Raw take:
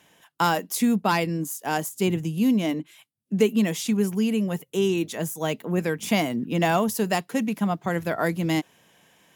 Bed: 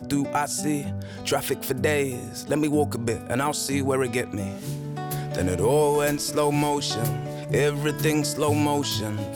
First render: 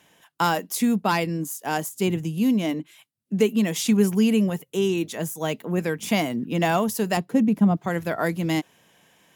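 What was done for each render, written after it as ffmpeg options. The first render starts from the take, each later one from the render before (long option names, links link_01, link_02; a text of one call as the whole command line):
ffmpeg -i in.wav -filter_complex "[0:a]asettb=1/sr,asplit=3[link_01][link_02][link_03];[link_01]atrim=end=7.174[link_04];[link_02]atrim=start=7.17:end=7.77,asetpts=PTS-STARTPTS,afade=type=in:duration=0.004:curve=qsin,afade=type=out:start_time=0.596:duration=0.004:curve=qsin,tiltshelf=frequency=730:gain=8[link_05];[link_03]atrim=start=7.766[link_06];[link_04][link_05]acrossfade=duration=0.004:curve1=hsin:curve2=qsin[link_07];[link_07][link_06]acrossfade=duration=0.004:curve1=qsin:curve2=hsin,asplit=3[link_08][link_09][link_10];[link_08]atrim=end=3.762[link_11];[link_09]atrim=start=3.758:end=4.502,asetpts=PTS-STARTPTS,volume=4dB[link_12];[link_10]atrim=start=4.498[link_13];[link_11][link_12]acrossfade=duration=0.004:curve1=hsin:curve2=hsin[link_14];[link_14][link_13]acrossfade=duration=0.004:curve1=hsin:curve2=hsin" out.wav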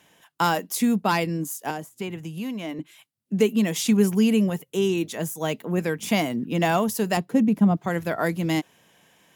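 ffmpeg -i in.wav -filter_complex "[0:a]asettb=1/sr,asplit=3[link_01][link_02][link_03];[link_01]atrim=end=1.704[link_04];[link_02]atrim=start=1.7:end=2.79,asetpts=PTS-STARTPTS,afade=type=in:duration=0.004:curve=qsin,afade=type=out:start_time=1.086:duration=0.004:curve=qsin,acrossover=split=650|2800[link_05][link_06][link_07];[link_05]acompressor=threshold=-32dB:ratio=4[link_08];[link_06]acompressor=threshold=-36dB:ratio=4[link_09];[link_07]acompressor=threshold=-49dB:ratio=4[link_10];[link_08][link_09][link_10]amix=inputs=3:normalize=0[link_11];[link_03]atrim=start=2.786[link_12];[link_04][link_11]acrossfade=duration=0.004:curve1=hsin:curve2=qsin[link_13];[link_13][link_12]acrossfade=duration=0.004:curve1=qsin:curve2=hsin" out.wav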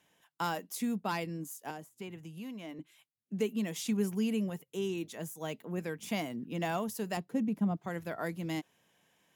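ffmpeg -i in.wav -af "volume=-12dB" out.wav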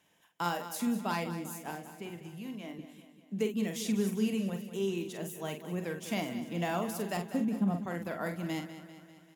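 ffmpeg -i in.wav -filter_complex "[0:a]asplit=2[link_01][link_02];[link_02]adelay=46,volume=-7dB[link_03];[link_01][link_03]amix=inputs=2:normalize=0,aecho=1:1:196|392|588|784|980|1176:0.251|0.146|0.0845|0.049|0.0284|0.0165" out.wav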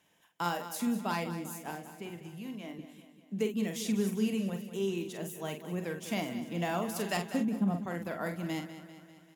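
ffmpeg -i in.wav -filter_complex "[0:a]asettb=1/sr,asplit=3[link_01][link_02][link_03];[link_01]atrim=end=6.964[link_04];[link_02]atrim=start=6.96:end=7.43,asetpts=PTS-STARTPTS,afade=type=in:duration=0.004:curve=qsin,afade=type=out:start_time=0.466:duration=0.004:curve=qsin,equalizer=frequency=3800:width=0.32:gain=6.5[link_05];[link_03]atrim=start=7.426[link_06];[link_04][link_05]acrossfade=duration=0.004:curve1=hsin:curve2=qsin[link_07];[link_07][link_06]acrossfade=duration=0.004:curve1=qsin:curve2=hsin" out.wav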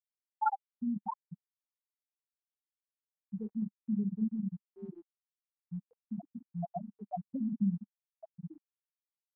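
ffmpeg -i in.wav -af "afftfilt=real='re*gte(hypot(re,im),0.2)':imag='im*gte(hypot(re,im),0.2)':win_size=1024:overlap=0.75,firequalizer=gain_entry='entry(200,0);entry(430,-18);entry(830,11)':delay=0.05:min_phase=1" out.wav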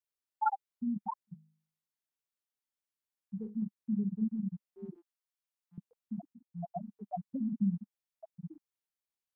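ffmpeg -i in.wav -filter_complex "[0:a]asplit=3[link_01][link_02][link_03];[link_01]afade=type=out:start_time=1.27:duration=0.02[link_04];[link_02]bandreject=frequency=52.47:width_type=h:width=4,bandreject=frequency=104.94:width_type=h:width=4,bandreject=frequency=157.41:width_type=h:width=4,bandreject=frequency=209.88:width_type=h:width=4,bandreject=frequency=262.35:width_type=h:width=4,bandreject=frequency=314.82:width_type=h:width=4,bandreject=frequency=367.29:width_type=h:width=4,bandreject=frequency=419.76:width_type=h:width=4,bandreject=frequency=472.23:width_type=h:width=4,bandreject=frequency=524.7:width_type=h:width=4,bandreject=frequency=577.17:width_type=h:width=4,bandreject=frequency=629.64:width_type=h:width=4,bandreject=frequency=682.11:width_type=h:width=4,afade=type=in:start_time=1.27:duration=0.02,afade=type=out:start_time=3.53:duration=0.02[link_05];[link_03]afade=type=in:start_time=3.53:duration=0.02[link_06];[link_04][link_05][link_06]amix=inputs=3:normalize=0,asettb=1/sr,asplit=3[link_07][link_08][link_09];[link_07]atrim=end=4.964[link_10];[link_08]atrim=start=4.96:end=5.78,asetpts=PTS-STARTPTS,afade=type=in:duration=0.004:curve=qsin,afade=type=out:start_time=0.816:duration=0.004:curve=qsin,highpass=590[link_11];[link_09]atrim=start=5.776[link_12];[link_10][link_11]acrossfade=duration=0.004:curve1=hsin:curve2=qsin[link_13];[link_13][link_12]acrossfade=duration=0.004:curve1=qsin:curve2=hsin,asplit=2[link_14][link_15];[link_14]atrim=end=6.33,asetpts=PTS-STARTPTS,afade=type=out:start_time=6.326:duration=0.004:curve=hsin:silence=0.199526[link_16];[link_15]atrim=start=6.33,asetpts=PTS-STARTPTS,afade=type=in:duration=0.47:silence=0.199526[link_17];[link_16][link_17]concat=n=2:v=0:a=1" out.wav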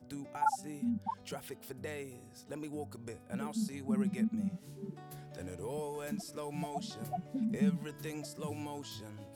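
ffmpeg -i in.wav -i bed.wav -filter_complex "[1:a]volume=-19.5dB[link_01];[0:a][link_01]amix=inputs=2:normalize=0" out.wav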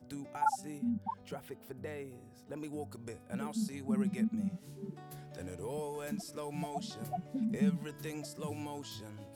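ffmpeg -i in.wav -filter_complex "[0:a]asettb=1/sr,asplit=3[link_01][link_02][link_03];[link_01]atrim=end=0.784[link_04];[link_02]atrim=start=0.78:end=2.57,asetpts=PTS-STARTPTS,afade=type=in:duration=0.004:curve=qsin,afade=type=out:start_time=1.786:duration=0.004:curve=qsin,equalizer=frequency=7100:width_type=o:width=2.7:gain=-9.5[link_05];[link_03]atrim=start=2.566[link_06];[link_04][link_05]acrossfade=duration=0.004:curve1=hsin:curve2=qsin[link_07];[link_07][link_06]acrossfade=duration=0.004:curve1=qsin:curve2=hsin" out.wav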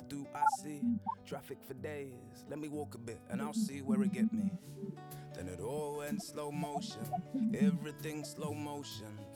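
ffmpeg -i in.wav -af "acompressor=mode=upward:threshold=-46dB:ratio=2.5" out.wav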